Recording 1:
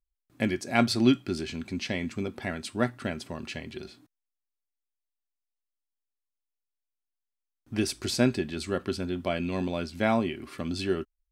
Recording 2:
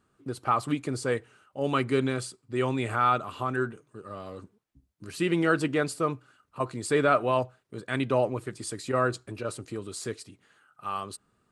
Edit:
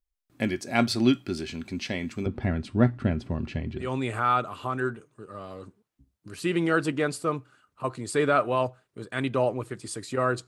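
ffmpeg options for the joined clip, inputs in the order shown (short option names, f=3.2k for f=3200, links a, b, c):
-filter_complex "[0:a]asettb=1/sr,asplit=3[a][b][c];[a]atrim=end=2.264[d];[b]atrim=start=2.26:end=3.95,asetpts=PTS-STARTPTS,afade=t=in:d=0.004:c=qsin,afade=t=out:st=1.686:d=0.004:c=qsin,aemphasis=mode=reproduction:type=riaa[e];[c]atrim=start=3.946[f];[d][e]acrossfade=d=0.004:c1=hsin:c2=qsin[g];[g][f]acrossfade=d=0.004:c1=qsin:c2=hsin,apad=whole_dur=10.47,atrim=end=10.47,atrim=end=3.95,asetpts=PTS-STARTPTS[h];[1:a]atrim=start=2.51:end=9.23,asetpts=PTS-STARTPTS[i];[h][i]acrossfade=d=0.2:c1=tri:c2=tri"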